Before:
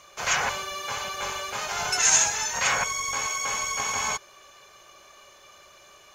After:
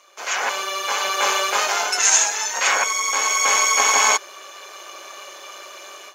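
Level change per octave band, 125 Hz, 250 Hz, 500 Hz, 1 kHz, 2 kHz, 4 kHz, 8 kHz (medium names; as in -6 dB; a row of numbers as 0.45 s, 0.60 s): under -15 dB, +4.0 dB, +8.0 dB, +8.5 dB, +7.0 dB, +7.0 dB, +6.0 dB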